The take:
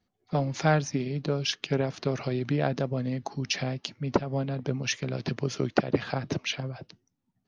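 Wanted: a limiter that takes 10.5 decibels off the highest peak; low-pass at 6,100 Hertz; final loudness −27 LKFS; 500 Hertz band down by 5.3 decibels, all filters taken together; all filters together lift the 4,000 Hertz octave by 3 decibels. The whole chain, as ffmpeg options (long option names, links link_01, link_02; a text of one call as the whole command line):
ffmpeg -i in.wav -af "lowpass=6100,equalizer=frequency=500:width_type=o:gain=-7,equalizer=frequency=4000:width_type=o:gain=5,volume=5.5dB,alimiter=limit=-14dB:level=0:latency=1" out.wav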